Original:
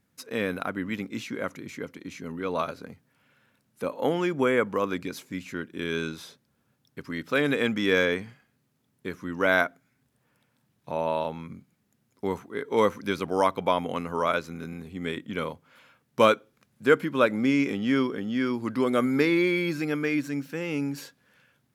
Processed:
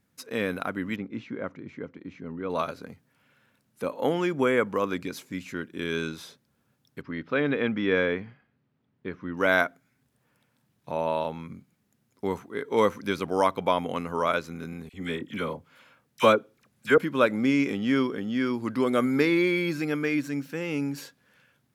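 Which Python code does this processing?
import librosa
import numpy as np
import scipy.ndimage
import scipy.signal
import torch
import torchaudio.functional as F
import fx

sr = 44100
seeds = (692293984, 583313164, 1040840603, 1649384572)

y = fx.spacing_loss(x, sr, db_at_10k=33, at=(0.96, 2.5))
y = fx.air_absorb(y, sr, metres=290.0, at=(7.01, 9.37))
y = fx.dispersion(y, sr, late='lows', ms=46.0, hz=1200.0, at=(14.89, 16.98))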